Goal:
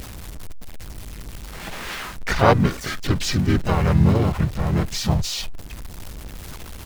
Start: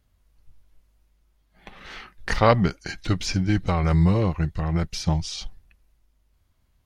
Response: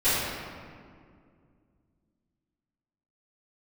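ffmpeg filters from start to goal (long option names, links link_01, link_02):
-filter_complex "[0:a]aeval=exprs='val(0)+0.5*0.0299*sgn(val(0))':channel_layout=same,asplit=3[link_01][link_02][link_03];[link_02]asetrate=35002,aresample=44100,atempo=1.25992,volume=-2dB[link_04];[link_03]asetrate=55563,aresample=44100,atempo=0.793701,volume=-5dB[link_05];[link_01][link_04][link_05]amix=inputs=3:normalize=0,volume=-1dB"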